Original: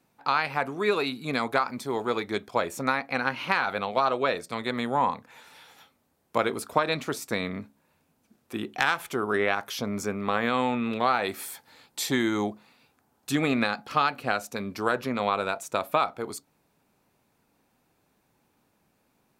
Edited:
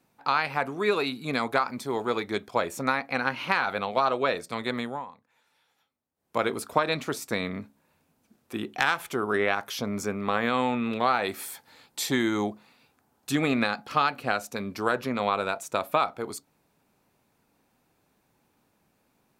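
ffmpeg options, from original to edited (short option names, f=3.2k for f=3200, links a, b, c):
-filter_complex "[0:a]asplit=3[a][b][c];[a]atrim=end=5.05,asetpts=PTS-STARTPTS,afade=t=out:st=4.74:d=0.31:silence=0.125893[d];[b]atrim=start=5.05:end=6.14,asetpts=PTS-STARTPTS,volume=-18dB[e];[c]atrim=start=6.14,asetpts=PTS-STARTPTS,afade=t=in:d=0.31:silence=0.125893[f];[d][e][f]concat=n=3:v=0:a=1"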